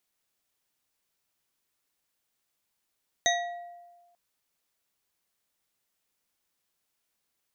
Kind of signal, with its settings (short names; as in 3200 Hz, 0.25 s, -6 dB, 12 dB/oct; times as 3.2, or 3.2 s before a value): glass hit bar, lowest mode 698 Hz, modes 4, decay 1.37 s, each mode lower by 0 dB, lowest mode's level -24 dB